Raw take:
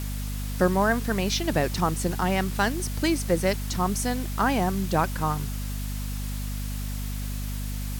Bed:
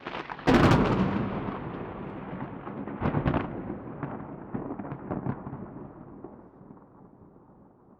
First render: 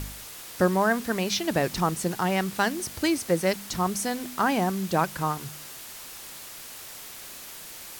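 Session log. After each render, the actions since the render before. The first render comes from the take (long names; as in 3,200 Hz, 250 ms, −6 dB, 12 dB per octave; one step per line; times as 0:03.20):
hum removal 50 Hz, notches 5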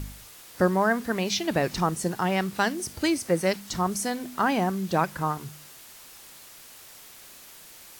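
noise reduction from a noise print 6 dB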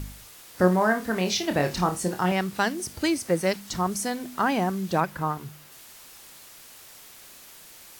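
0:00.57–0:02.32: flutter between parallel walls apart 4.7 metres, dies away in 0.22 s
0:03.07–0:04.29: one scale factor per block 7 bits
0:05.00–0:05.72: parametric band 7,400 Hz −5 dB 1.9 octaves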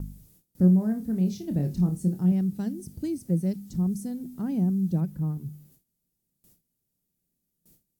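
drawn EQ curve 110 Hz 0 dB, 170 Hz +7 dB, 1,100 Hz −28 dB, 2,700 Hz −26 dB, 14,000 Hz −9 dB
noise gate with hold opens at −46 dBFS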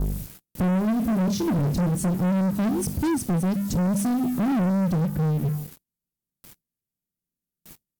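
downward compressor 2 to 1, threshold −33 dBFS, peak gain reduction 10.5 dB
leveller curve on the samples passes 5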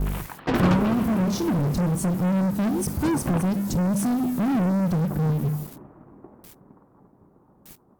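mix in bed −3 dB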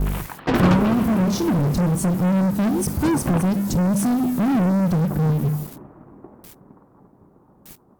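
level +3.5 dB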